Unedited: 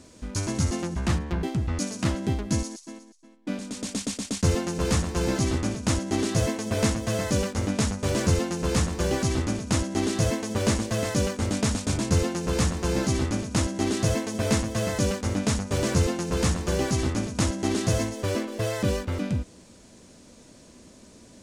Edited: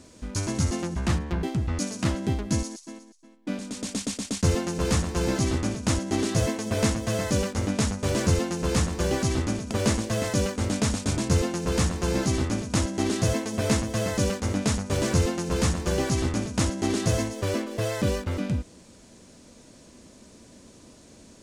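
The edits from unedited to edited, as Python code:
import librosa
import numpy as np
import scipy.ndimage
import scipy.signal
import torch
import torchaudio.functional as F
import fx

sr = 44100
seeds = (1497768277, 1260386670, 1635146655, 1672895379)

y = fx.edit(x, sr, fx.cut(start_s=9.71, length_s=0.81), tone=tone)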